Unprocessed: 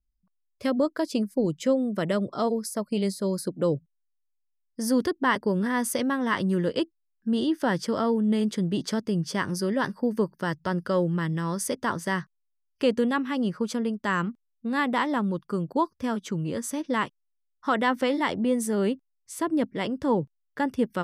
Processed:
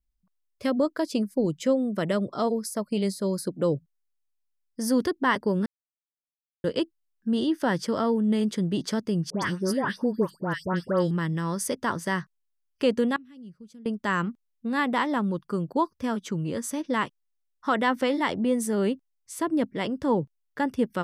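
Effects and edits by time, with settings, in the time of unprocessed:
0:05.66–0:06.64: silence
0:09.30–0:11.11: all-pass dispersion highs, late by 124 ms, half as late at 1,900 Hz
0:13.16–0:13.86: guitar amp tone stack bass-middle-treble 10-0-1

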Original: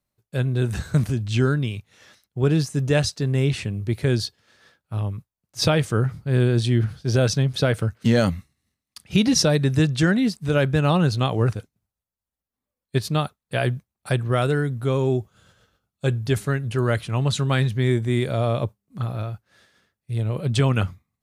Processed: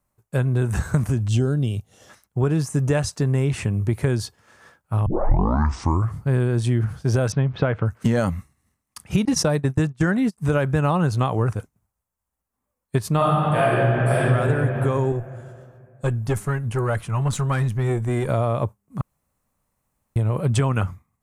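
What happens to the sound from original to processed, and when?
0:01.28–0:02.10: gain on a spectral selection 800–2,700 Hz −11 dB
0:05.06: tape start 1.17 s
0:07.32–0:07.86: low-pass filter 3,300 Hz 24 dB per octave
0:09.25–0:10.38: noise gate −22 dBFS, range −28 dB
0:13.16–0:14.25: thrown reverb, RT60 2.5 s, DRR −11 dB
0:15.12–0:18.29: tube saturation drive 12 dB, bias 0.75
0:19.01–0:20.16: fill with room tone
whole clip: octave-band graphic EQ 1,000/4,000/8,000 Hz +7/−10/+4 dB; downward compressor 4 to 1, threshold −23 dBFS; low-shelf EQ 88 Hz +5 dB; level +4.5 dB

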